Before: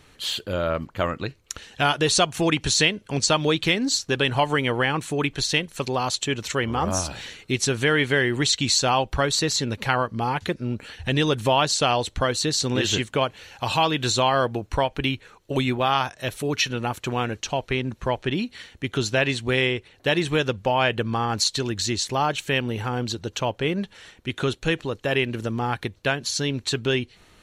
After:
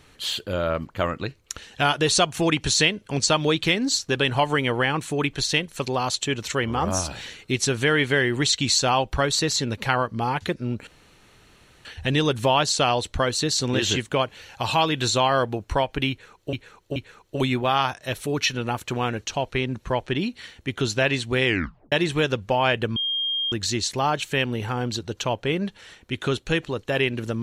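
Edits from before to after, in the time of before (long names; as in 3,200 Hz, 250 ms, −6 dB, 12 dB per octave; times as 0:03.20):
0:10.87: splice in room tone 0.98 s
0:15.12–0:15.55: repeat, 3 plays
0:19.62: tape stop 0.46 s
0:21.12–0:21.68: beep over 3,220 Hz −22.5 dBFS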